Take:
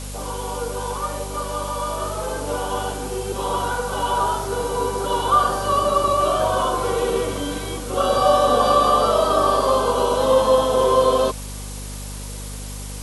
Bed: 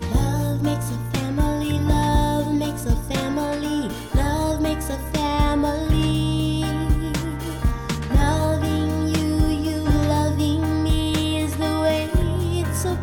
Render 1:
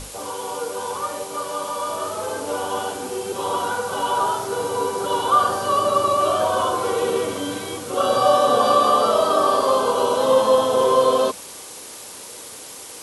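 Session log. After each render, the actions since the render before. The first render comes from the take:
mains-hum notches 50/100/150/200/250 Hz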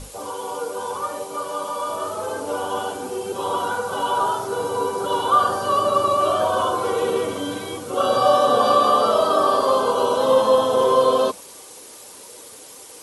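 broadband denoise 6 dB, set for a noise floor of −38 dBFS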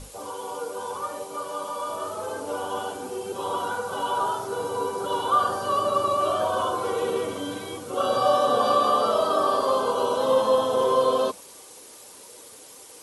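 level −4.5 dB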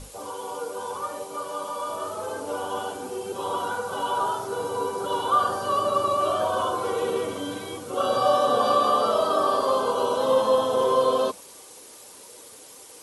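no processing that can be heard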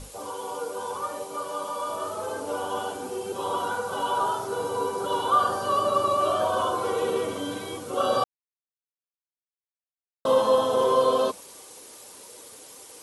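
0:08.24–0:10.25: silence

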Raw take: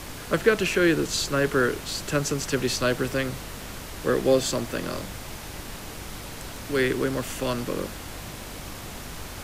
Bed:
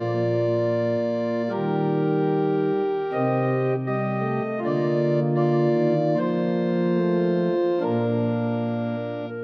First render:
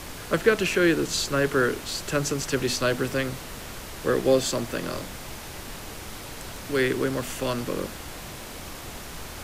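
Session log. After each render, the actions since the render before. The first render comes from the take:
hum removal 50 Hz, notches 6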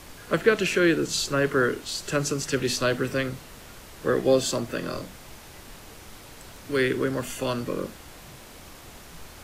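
noise reduction from a noise print 7 dB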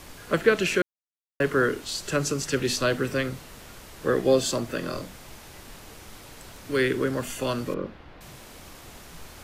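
0:00.82–0:01.40: silence
0:07.74–0:08.21: high-frequency loss of the air 320 metres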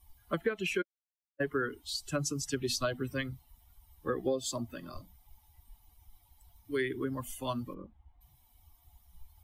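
spectral dynamics exaggerated over time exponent 2
downward compressor 6 to 1, threshold −28 dBFS, peak gain reduction 13 dB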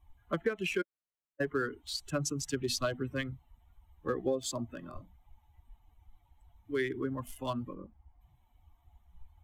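adaptive Wiener filter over 9 samples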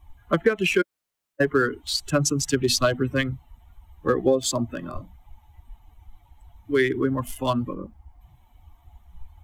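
level +11.5 dB

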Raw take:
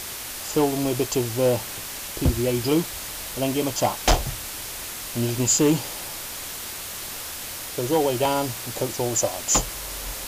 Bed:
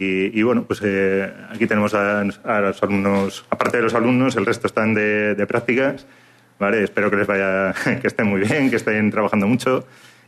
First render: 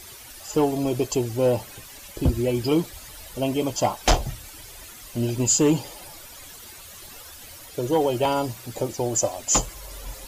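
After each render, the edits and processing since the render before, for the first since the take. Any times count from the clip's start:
broadband denoise 13 dB, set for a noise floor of −34 dBFS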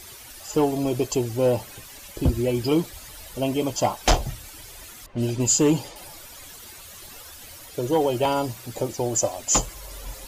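0:05.06–0:05.96: low-pass that shuts in the quiet parts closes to 1,200 Hz, open at −20 dBFS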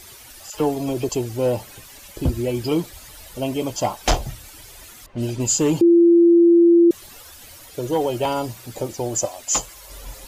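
0:00.50–0:01.09: all-pass dispersion lows, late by 41 ms, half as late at 1,200 Hz
0:05.81–0:06.91: beep over 341 Hz −9 dBFS
0:09.25–0:09.90: low-shelf EQ 450 Hz −9.5 dB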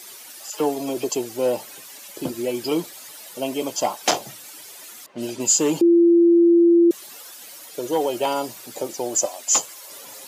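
high-pass filter 160 Hz 24 dB per octave
bass and treble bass −7 dB, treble +3 dB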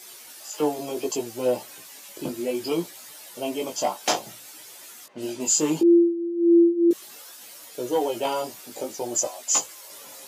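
chorus effect 0.64 Hz, delay 16 ms, depth 4.3 ms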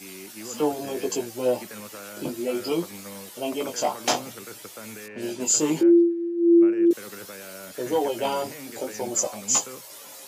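mix in bed −23.5 dB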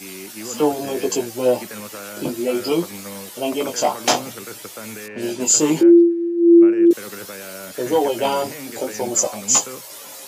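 level +6 dB

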